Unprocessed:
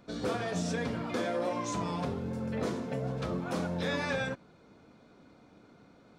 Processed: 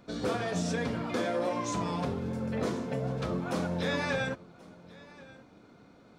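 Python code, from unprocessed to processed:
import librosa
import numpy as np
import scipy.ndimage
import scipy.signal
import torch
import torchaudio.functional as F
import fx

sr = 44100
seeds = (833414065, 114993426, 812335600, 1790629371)

y = x + 10.0 ** (-21.5 / 20.0) * np.pad(x, (int(1082 * sr / 1000.0), 0))[:len(x)]
y = y * 10.0 ** (1.5 / 20.0)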